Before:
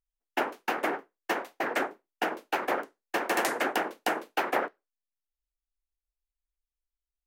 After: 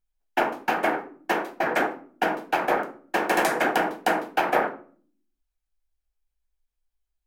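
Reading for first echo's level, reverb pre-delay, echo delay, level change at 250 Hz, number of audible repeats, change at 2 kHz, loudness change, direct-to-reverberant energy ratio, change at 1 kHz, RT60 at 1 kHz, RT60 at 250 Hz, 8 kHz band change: none, 5 ms, none, +6.0 dB, none, +5.0 dB, +5.5 dB, 5.0 dB, +6.5 dB, 0.40 s, 0.85 s, +2.0 dB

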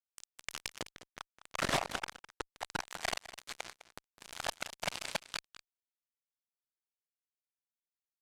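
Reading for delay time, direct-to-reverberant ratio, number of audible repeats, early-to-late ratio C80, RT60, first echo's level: 0.206 s, none, 1, none, none, -15.0 dB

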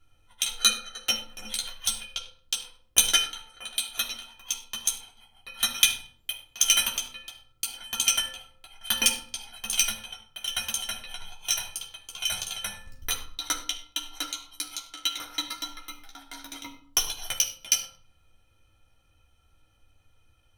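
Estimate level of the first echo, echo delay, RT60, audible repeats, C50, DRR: none, none, 0.55 s, none, 10.0 dB, -2.5 dB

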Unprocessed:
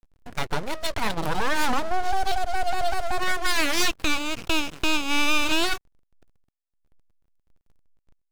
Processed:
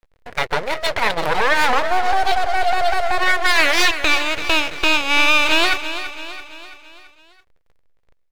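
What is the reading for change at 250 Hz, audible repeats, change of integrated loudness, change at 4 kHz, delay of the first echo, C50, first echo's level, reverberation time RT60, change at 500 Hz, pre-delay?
+1.0 dB, 5, +8.5 dB, +7.5 dB, 0.334 s, none, -11.5 dB, none, +8.5 dB, none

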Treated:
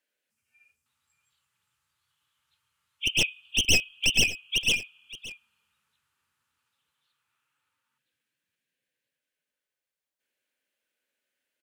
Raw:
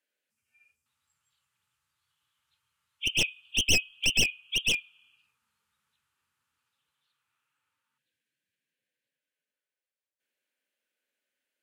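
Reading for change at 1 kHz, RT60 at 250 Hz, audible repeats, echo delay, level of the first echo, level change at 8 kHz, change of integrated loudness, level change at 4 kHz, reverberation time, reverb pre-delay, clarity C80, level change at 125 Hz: +2.0 dB, none, 1, 0.573 s, -16.5 dB, +2.0 dB, +2.0 dB, +2.0 dB, none, none, none, +2.0 dB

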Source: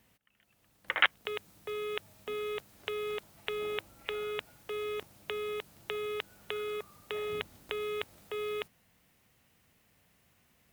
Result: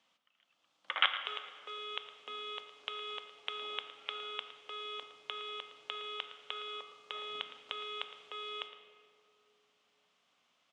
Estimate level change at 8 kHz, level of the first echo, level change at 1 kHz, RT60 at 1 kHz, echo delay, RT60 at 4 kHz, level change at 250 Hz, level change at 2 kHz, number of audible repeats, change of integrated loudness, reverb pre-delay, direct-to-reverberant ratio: -10.0 dB, -14.0 dB, -0.5 dB, 2.0 s, 0.112 s, 1.4 s, -13.5 dB, -5.5 dB, 1, -3.5 dB, 4 ms, 7.0 dB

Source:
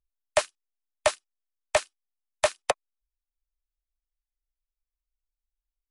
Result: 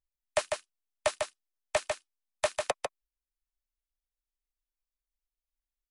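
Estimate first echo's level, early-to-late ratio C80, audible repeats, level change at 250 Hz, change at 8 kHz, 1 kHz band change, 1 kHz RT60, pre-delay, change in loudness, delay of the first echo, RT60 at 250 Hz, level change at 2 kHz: -4.5 dB, none, 1, -2.0 dB, -4.5 dB, -4.5 dB, none, none, -5.5 dB, 0.148 s, none, -4.5 dB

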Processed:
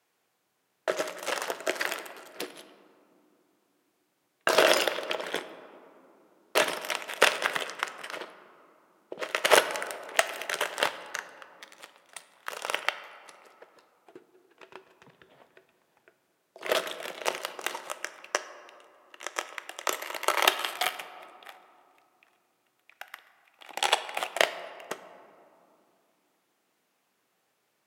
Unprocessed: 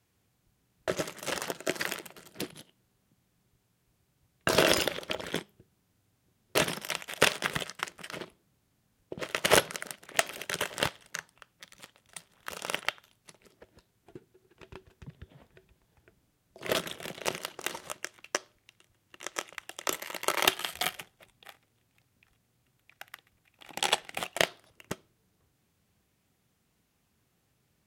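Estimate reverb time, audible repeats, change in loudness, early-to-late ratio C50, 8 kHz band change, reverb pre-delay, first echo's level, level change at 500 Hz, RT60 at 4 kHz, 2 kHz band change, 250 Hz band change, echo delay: 2.9 s, none, +2.5 dB, 12.5 dB, -0.5 dB, 6 ms, none, +3.0 dB, 1.2 s, +3.0 dB, -3.0 dB, none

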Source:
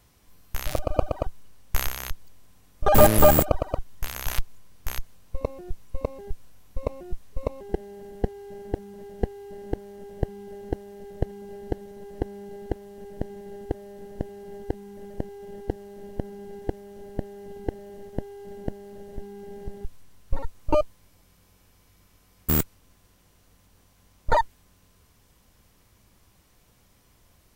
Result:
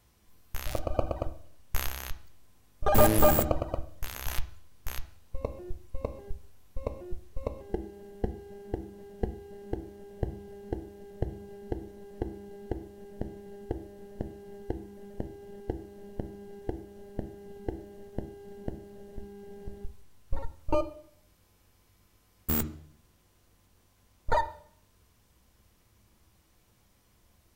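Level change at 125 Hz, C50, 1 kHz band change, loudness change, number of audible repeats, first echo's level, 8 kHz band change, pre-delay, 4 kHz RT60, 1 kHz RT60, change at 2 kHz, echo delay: -5.0 dB, 15.0 dB, -5.5 dB, -5.5 dB, none, none, -5.5 dB, 7 ms, 0.70 s, 0.55 s, -5.0 dB, none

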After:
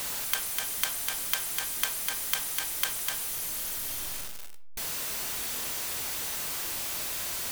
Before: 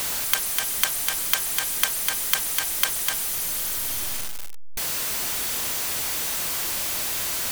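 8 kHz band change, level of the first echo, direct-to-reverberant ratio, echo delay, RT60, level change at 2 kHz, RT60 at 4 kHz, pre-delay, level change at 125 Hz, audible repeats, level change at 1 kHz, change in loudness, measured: -6.5 dB, none, 7.0 dB, none, 0.55 s, -6.5 dB, 0.35 s, 10 ms, -6.0 dB, none, -6.0 dB, -6.5 dB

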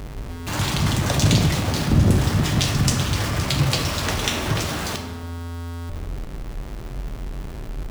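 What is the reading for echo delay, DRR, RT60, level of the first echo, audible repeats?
none, 4.0 dB, 1.2 s, none, none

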